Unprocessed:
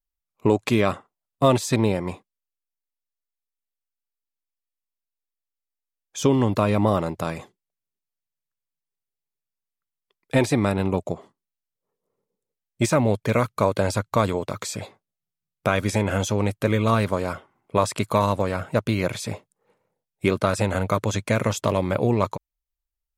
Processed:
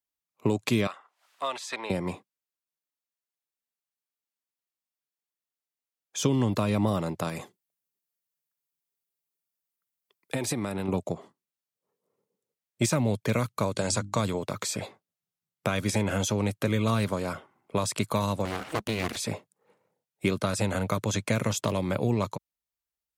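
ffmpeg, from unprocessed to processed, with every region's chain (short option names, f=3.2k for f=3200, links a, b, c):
-filter_complex "[0:a]asettb=1/sr,asplit=3[a][b][c];[a]atrim=end=0.874[d];[b]atrim=start=0.87:end=1.9,asetpts=PTS-STARTPTS,afade=t=in:d=0.004:c=qsin,afade=t=out:st=1.026:d=0.004:c=qsin,highpass=1.1k,aemphasis=mode=reproduction:type=75fm,acompressor=mode=upward:threshold=-37dB:ratio=2.5:attack=3.2:release=140:knee=2.83:detection=peak[e];[c]atrim=start=1.896[f];[d][e]acrossfade=d=0.004:c1=hsin:c2=qsin[g];[g][f]acrossfade=d=0.004:c1=qsin:c2=hsin,asettb=1/sr,asplit=3[h][i][j];[h]atrim=end=7.284[k];[i]atrim=start=7.28:end=10.88,asetpts=PTS-STARTPTS,afade=t=in:d=0.004:c=qsin,afade=t=out:st=3.596:d=0.004:c=qsin,highshelf=f=8.7k:g=9.5,acompressor=threshold=-24dB:ratio=6:attack=3.2:release=140:knee=1:detection=peak[l];[j]atrim=start=10.876[m];[k][l]acrossfade=d=0.004:c1=hsin:c2=qsin[n];[n][m]acrossfade=d=0.004:c1=qsin:c2=hsin,asettb=1/sr,asplit=3[o][p][q];[o]atrim=end=13.724[r];[p]atrim=start=13.72:end=14.2,asetpts=PTS-STARTPTS,afade=t=in:d=0.004:c=qsin,afade=t=out:st=0.476:d=0.004:c=qsin,lowpass=f=7.8k:t=q:w=2.2,bandreject=f=50:t=h:w=6,bandreject=f=100:t=h:w=6,bandreject=f=150:t=h:w=6,bandreject=f=200:t=h:w=6,bandreject=f=250:t=h:w=6,bandreject=f=300:t=h:w=6,bandreject=f=350:t=h:w=6[s];[q]atrim=start=14.196[t];[r][s]acrossfade=d=0.004:c1=hsin:c2=qsin[u];[u][t]acrossfade=d=0.004:c1=qsin:c2=hsin,asettb=1/sr,asplit=3[v][w][x];[v]atrim=end=18.454[y];[w]atrim=start=18.45:end=19.16,asetpts=PTS-STARTPTS,afade=t=in:d=0.004:c=qsin,afade=t=out:st=0.706:d=0.004:c=qsin,aeval=exprs='abs(val(0))':c=same,acompressor=mode=upward:threshold=-24dB:ratio=2.5:attack=3.2:release=140:knee=2.83:detection=peak[z];[x]atrim=start=19.156[aa];[y][z]acrossfade=d=0.004:c1=hsin:c2=qsin[ab];[ab][aa]acrossfade=d=0.004:c1=qsin:c2=hsin,highpass=120,acrossover=split=210|3000[ac][ad][ae];[ad]acompressor=threshold=-29dB:ratio=3[af];[ac][af][ae]amix=inputs=3:normalize=0"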